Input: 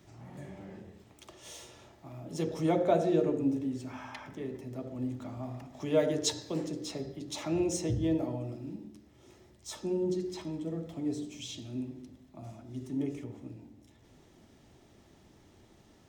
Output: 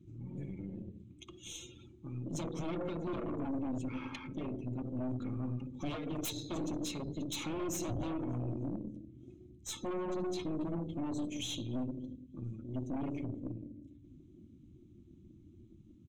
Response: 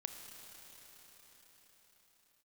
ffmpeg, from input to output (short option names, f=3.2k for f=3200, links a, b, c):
-af "lowpass=f=8.5k:w=0.5412,lowpass=f=8.5k:w=1.3066,aecho=1:1:292|584|876|1168:0.0841|0.0463|0.0255|0.014,acompressor=threshold=-31dB:ratio=8,asuperstop=centerf=650:order=8:qfactor=2.3,aeval=exprs='0.0188*(abs(mod(val(0)/0.0188+3,4)-2)-1)':c=same,superequalizer=7b=0.355:9b=0.355:10b=0.562:11b=0.316:14b=0.398,afftdn=nr=22:nf=-55,aeval=exprs='(tanh(79.4*val(0)+0.55)-tanh(0.55))/79.4':c=same,volume=7dB"